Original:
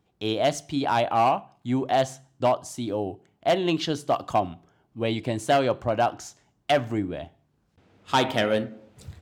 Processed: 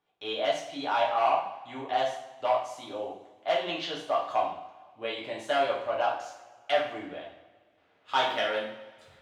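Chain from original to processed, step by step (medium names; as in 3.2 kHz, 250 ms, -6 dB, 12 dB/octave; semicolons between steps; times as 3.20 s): three-band isolator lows -18 dB, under 520 Hz, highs -13 dB, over 4.1 kHz; two-slope reverb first 0.55 s, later 1.8 s, from -17 dB, DRR -4 dB; trim -6.5 dB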